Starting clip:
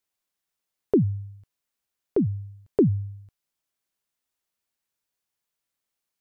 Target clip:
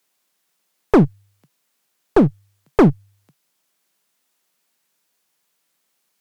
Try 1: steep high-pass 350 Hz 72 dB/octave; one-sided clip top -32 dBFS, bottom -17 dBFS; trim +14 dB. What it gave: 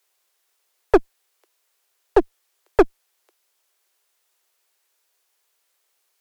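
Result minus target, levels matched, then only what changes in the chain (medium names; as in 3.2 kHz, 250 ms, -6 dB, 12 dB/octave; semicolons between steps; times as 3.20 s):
125 Hz band -16.5 dB
change: steep high-pass 140 Hz 72 dB/octave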